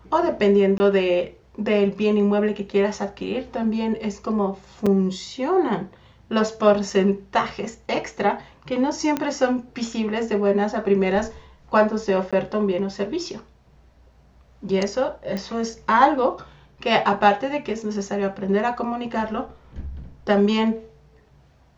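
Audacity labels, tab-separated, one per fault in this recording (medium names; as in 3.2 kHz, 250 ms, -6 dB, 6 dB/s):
0.780000	0.800000	dropout 20 ms
4.860000	4.860000	dropout 4.8 ms
6.900000	6.900000	dropout 3.3 ms
9.170000	9.170000	pop -10 dBFS
12.310000	12.330000	dropout 16 ms
15.370000	15.370000	pop -17 dBFS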